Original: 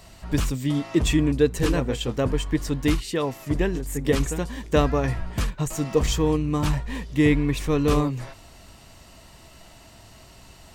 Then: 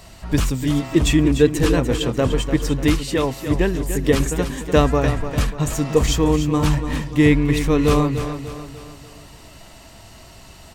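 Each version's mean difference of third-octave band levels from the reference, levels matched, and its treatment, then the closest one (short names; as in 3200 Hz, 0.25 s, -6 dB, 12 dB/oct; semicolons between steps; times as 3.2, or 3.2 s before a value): 2.5 dB: feedback echo 0.295 s, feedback 46%, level -10 dB; gain +4.5 dB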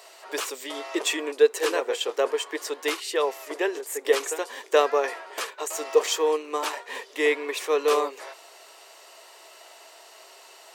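9.5 dB: elliptic high-pass 400 Hz, stop band 60 dB; gain +3 dB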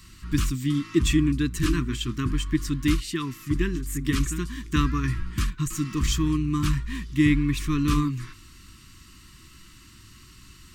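4.5 dB: elliptic band-stop 350–1100 Hz, stop band 40 dB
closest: first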